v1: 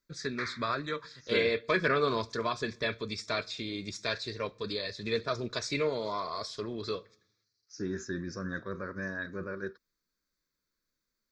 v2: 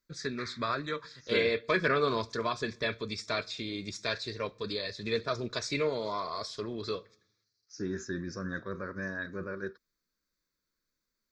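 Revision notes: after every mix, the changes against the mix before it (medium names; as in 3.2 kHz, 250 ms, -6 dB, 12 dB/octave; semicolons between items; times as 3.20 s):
background -7.0 dB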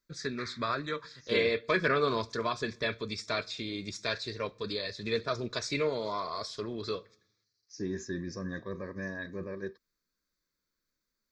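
second voice: add Butterworth band-stop 1.4 kHz, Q 3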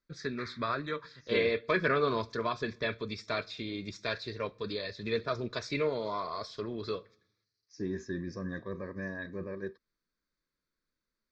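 master: add distance through air 130 m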